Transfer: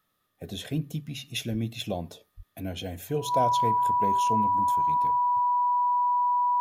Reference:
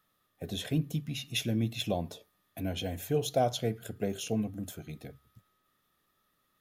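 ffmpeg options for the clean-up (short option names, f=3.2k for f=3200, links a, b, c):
-filter_complex "[0:a]bandreject=f=980:w=30,asplit=3[a][b][c];[a]afade=t=out:st=1.51:d=0.02[d];[b]highpass=f=140:w=0.5412,highpass=f=140:w=1.3066,afade=t=in:st=1.51:d=0.02,afade=t=out:st=1.63:d=0.02[e];[c]afade=t=in:st=1.63:d=0.02[f];[d][e][f]amix=inputs=3:normalize=0,asplit=3[g][h][i];[g]afade=t=out:st=2.36:d=0.02[j];[h]highpass=f=140:w=0.5412,highpass=f=140:w=1.3066,afade=t=in:st=2.36:d=0.02,afade=t=out:st=2.48:d=0.02[k];[i]afade=t=in:st=2.48:d=0.02[l];[j][k][l]amix=inputs=3:normalize=0"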